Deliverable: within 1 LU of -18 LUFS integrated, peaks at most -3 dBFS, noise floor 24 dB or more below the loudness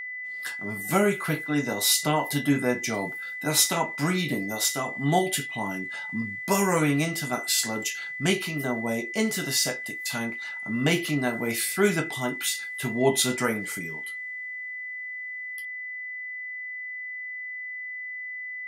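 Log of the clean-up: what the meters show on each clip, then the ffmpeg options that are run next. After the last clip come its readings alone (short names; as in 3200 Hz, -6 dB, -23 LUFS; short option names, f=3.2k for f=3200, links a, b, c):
steady tone 2000 Hz; tone level -33 dBFS; loudness -27.0 LUFS; peak -7.5 dBFS; loudness target -18.0 LUFS
-> -af "bandreject=f=2k:w=30"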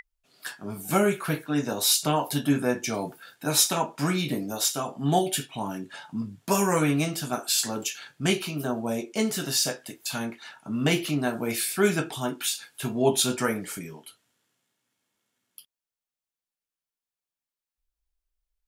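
steady tone none; loudness -26.5 LUFS; peak -7.5 dBFS; loudness target -18.0 LUFS
-> -af "volume=8.5dB,alimiter=limit=-3dB:level=0:latency=1"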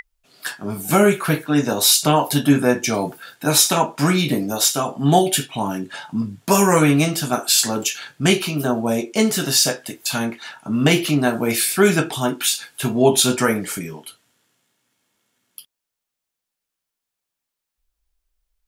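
loudness -18.5 LUFS; peak -3.0 dBFS; noise floor -83 dBFS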